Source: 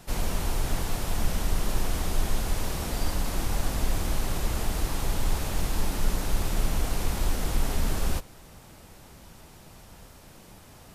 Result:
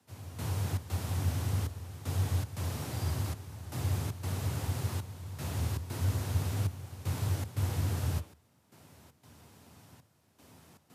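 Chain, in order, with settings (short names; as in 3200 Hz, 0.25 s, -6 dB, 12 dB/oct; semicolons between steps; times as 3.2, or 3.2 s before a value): de-hum 123.7 Hz, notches 28; step gate "...xxx.xxxxxx" 117 bpm -12 dB; frequency shift +72 Hz; gain -7.5 dB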